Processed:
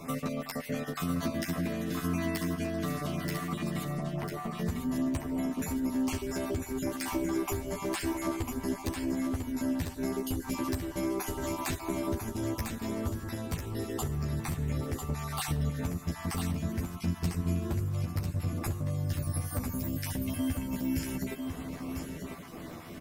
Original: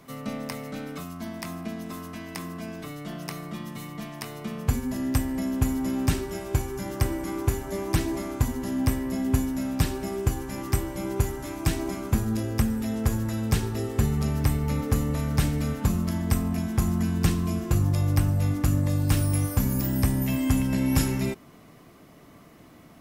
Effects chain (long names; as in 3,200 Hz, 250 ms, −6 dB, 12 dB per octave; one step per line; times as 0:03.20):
time-frequency cells dropped at random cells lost 33%
0:03.83–0:04.52: low-pass filter 1,100 Hz 12 dB per octave
downward compressor 12 to 1, threshold −38 dBFS, peak gain reduction 22 dB
wave folding −33 dBFS
double-tracking delay 12 ms −3 dB
single-tap delay 998 ms −6 dB
convolution reverb RT60 1.2 s, pre-delay 102 ms, DRR 18.5 dB
level +6.5 dB